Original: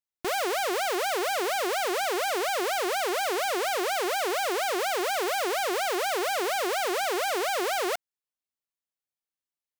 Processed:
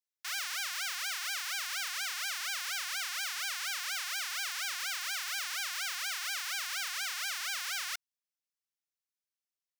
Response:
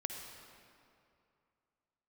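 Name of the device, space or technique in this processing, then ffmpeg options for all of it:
headphones lying on a table: -af "highpass=f=1.4k:w=0.5412,highpass=f=1.4k:w=1.3066,equalizer=f=5.5k:t=o:w=0.56:g=5,volume=-4dB"

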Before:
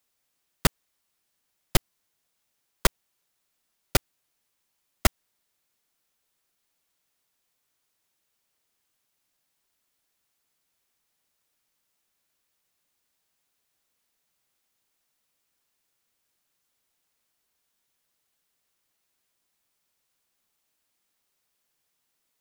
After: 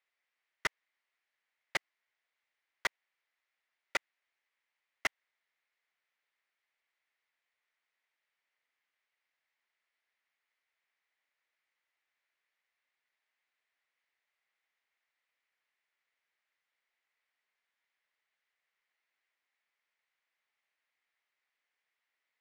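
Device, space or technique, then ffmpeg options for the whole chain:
megaphone: -af "highpass=560,lowpass=3.4k,equalizer=f=2k:t=o:w=0.59:g=11,asoftclip=type=hard:threshold=-18dB,volume=-6.5dB"

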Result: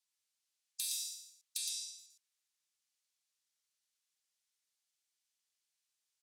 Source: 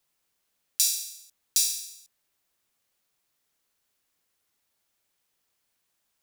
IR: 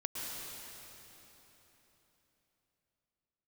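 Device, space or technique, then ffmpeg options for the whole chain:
piezo pickup straight into a mixer: -filter_complex "[0:a]asplit=3[a][b][c];[a]afade=t=out:st=1.57:d=0.02[d];[b]lowpass=8.1k,afade=t=in:st=1.57:d=0.02,afade=t=out:st=1.97:d=0.02[e];[c]afade=t=in:st=1.97:d=0.02[f];[d][e][f]amix=inputs=3:normalize=0,lowpass=6.4k,aderivative,afftfilt=real='re*lt(hypot(re,im),0.0631)':imag='im*lt(hypot(re,im),0.0631)':win_size=1024:overlap=0.75,aecho=1:1:114:0.596,volume=-2.5dB"

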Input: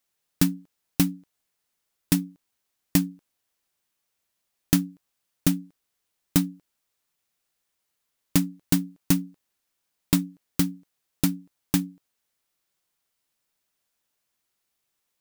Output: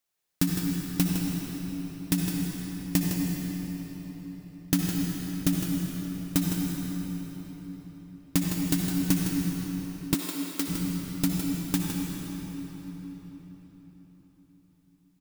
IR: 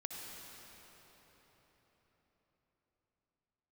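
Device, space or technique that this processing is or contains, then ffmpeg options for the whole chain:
cave: -filter_complex "[0:a]aecho=1:1:159:0.398[a];[1:a]atrim=start_sample=2205[b];[a][b]afir=irnorm=-1:irlink=0,asettb=1/sr,asplit=3[c][d][e];[c]atrim=end=10.144[f];[d]atrim=start=10.14:end=10.68,asetpts=PTS-STARTPTS,afade=t=in:d=0.004:c=qsin,afade=t=out:st=0.536:d=0.004:c=qsin,highpass=f=280:w=0.5412,highpass=f=280:w=1.3066[g];[e]atrim=start=10.676[h];[f][g]acrossfade=d=0.004:c1=hsin:c2=qsin[i];[i][h]acrossfade=d=0.004:c1=qsin:c2=hsin"

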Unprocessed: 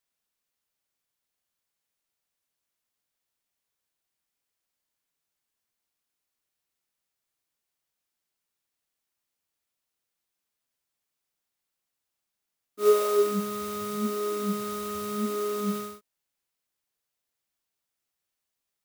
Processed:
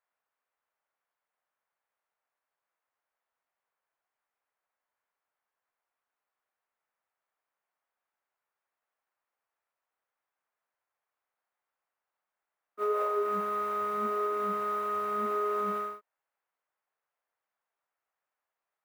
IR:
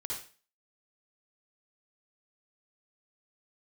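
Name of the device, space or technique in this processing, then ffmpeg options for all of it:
DJ mixer with the lows and highs turned down: -filter_complex "[0:a]acrossover=split=550 2000:gain=0.0794 1 0.0708[a][b][c];[a][b][c]amix=inputs=3:normalize=0,alimiter=level_in=6dB:limit=-24dB:level=0:latency=1:release=154,volume=-6dB,equalizer=f=4.8k:w=0.43:g=-4.5,volume=8.5dB"

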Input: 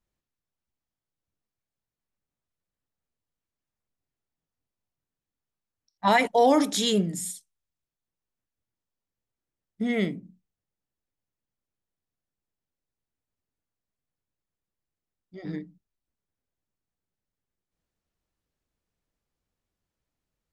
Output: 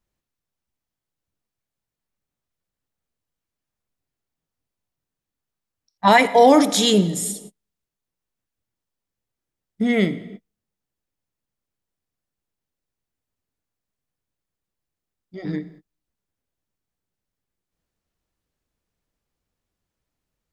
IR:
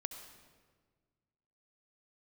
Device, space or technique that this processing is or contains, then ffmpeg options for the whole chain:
keyed gated reverb: -filter_complex "[0:a]asplit=3[a][b][c];[1:a]atrim=start_sample=2205[d];[b][d]afir=irnorm=-1:irlink=0[e];[c]apad=whole_len=905095[f];[e][f]sidechaingate=range=-46dB:threshold=-53dB:ratio=16:detection=peak,volume=-3.5dB[g];[a][g]amix=inputs=2:normalize=0,volume=3.5dB"

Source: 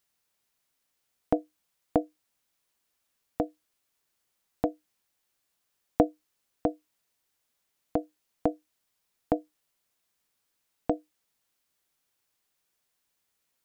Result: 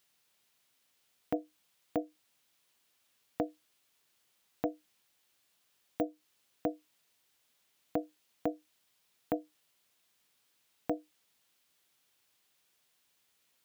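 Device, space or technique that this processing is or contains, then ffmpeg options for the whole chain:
broadcast voice chain: -af "highpass=79,deesser=1,acompressor=threshold=-29dB:ratio=4,equalizer=f=3.2k:t=o:w=1.1:g=4.5,alimiter=limit=-20dB:level=0:latency=1:release=18,volume=3.5dB"

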